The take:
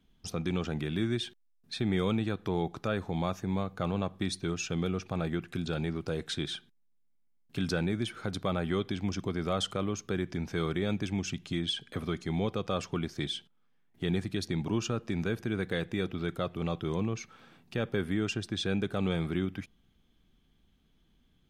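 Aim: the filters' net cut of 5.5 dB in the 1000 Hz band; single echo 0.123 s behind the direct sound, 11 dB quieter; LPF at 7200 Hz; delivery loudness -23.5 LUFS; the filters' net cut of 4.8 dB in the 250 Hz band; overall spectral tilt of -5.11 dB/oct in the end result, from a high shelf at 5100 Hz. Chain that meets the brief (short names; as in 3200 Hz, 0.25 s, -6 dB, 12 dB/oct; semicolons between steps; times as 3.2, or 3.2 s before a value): LPF 7200 Hz; bell 250 Hz -7 dB; bell 1000 Hz -7 dB; high shelf 5100 Hz -6 dB; echo 0.123 s -11 dB; gain +13 dB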